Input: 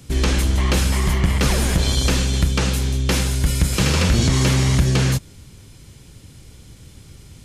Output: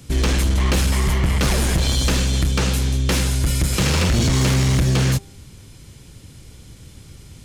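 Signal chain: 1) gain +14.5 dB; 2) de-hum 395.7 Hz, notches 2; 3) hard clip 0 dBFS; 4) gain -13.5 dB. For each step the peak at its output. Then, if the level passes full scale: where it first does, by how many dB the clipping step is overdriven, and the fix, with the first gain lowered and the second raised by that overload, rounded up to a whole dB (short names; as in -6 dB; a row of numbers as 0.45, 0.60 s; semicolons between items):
+8.0, +8.0, 0.0, -13.5 dBFS; step 1, 8.0 dB; step 1 +6.5 dB, step 4 -5.5 dB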